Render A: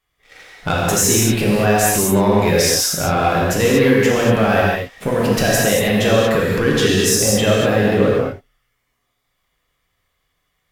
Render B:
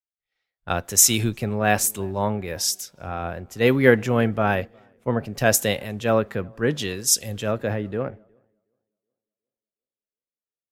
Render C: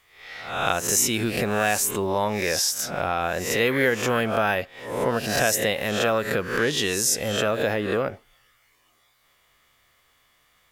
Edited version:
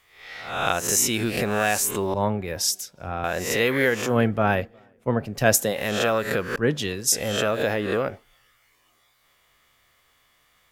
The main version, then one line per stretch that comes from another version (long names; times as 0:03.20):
C
0:02.14–0:03.24: punch in from B
0:04.09–0:05.70: punch in from B, crossfade 0.16 s
0:06.56–0:07.12: punch in from B
not used: A